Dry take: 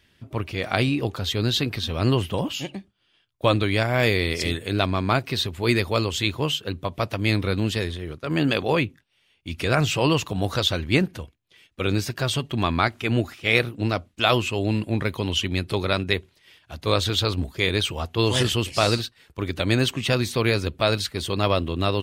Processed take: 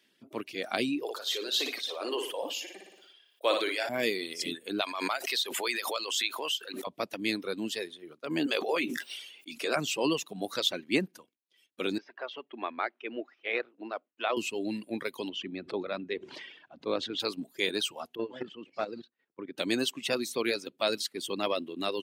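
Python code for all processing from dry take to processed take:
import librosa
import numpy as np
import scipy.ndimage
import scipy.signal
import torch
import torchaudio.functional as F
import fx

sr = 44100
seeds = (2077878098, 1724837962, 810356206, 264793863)

y = fx.chain(x, sr, fx.highpass(hz=400.0, slope=24),
    fx.room_flutter(wall_m=10.0, rt60_s=0.62),
    fx.sustainer(db_per_s=31.0), at=(1.03, 3.89))
y = fx.chain(y, sr, fx.highpass(hz=740.0, slope=12),
    fx.pre_swell(db_per_s=30.0), at=(4.81, 6.87))
y = fx.chain(y, sr, fx.highpass(hz=320.0, slope=12),
    fx.doubler(ms=13.0, db=-9.0),
    fx.sustainer(db_per_s=32.0), at=(8.46, 9.76))
y = fx.chain(y, sr, fx.bandpass_edges(low_hz=450.0, high_hz=2400.0),
    fx.air_absorb(metres=170.0), at=(11.98, 14.37))
y = fx.chain(y, sr, fx.highpass(hz=50.0, slope=12),
    fx.spacing_loss(db_at_10k=32),
    fx.sustainer(db_per_s=41.0), at=(15.29, 17.2))
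y = fx.chain(y, sr, fx.lowpass(hz=1700.0, slope=12),
    fx.level_steps(step_db=10),
    fx.transformer_sat(knee_hz=440.0), at=(18.15, 19.58))
y = scipy.signal.sosfilt(scipy.signal.butter(4, 230.0, 'highpass', fs=sr, output='sos'), y)
y = fx.dereverb_blind(y, sr, rt60_s=1.6)
y = fx.peak_eq(y, sr, hz=1200.0, db=-5.5, octaves=2.6)
y = y * 10.0 ** (-3.0 / 20.0)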